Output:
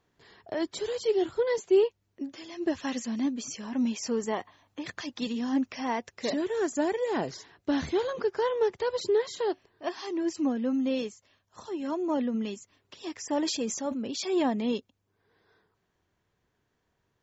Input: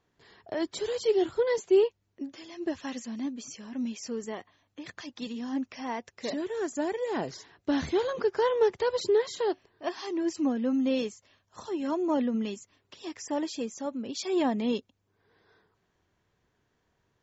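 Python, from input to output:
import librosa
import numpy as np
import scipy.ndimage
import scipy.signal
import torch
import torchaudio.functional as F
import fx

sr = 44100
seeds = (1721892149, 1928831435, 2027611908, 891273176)

y = fx.rider(x, sr, range_db=5, speed_s=2.0)
y = fx.peak_eq(y, sr, hz=910.0, db=5.5, octaves=0.79, at=(3.63, 4.82))
y = fx.sustainer(y, sr, db_per_s=57.0, at=(13.32, 14.37))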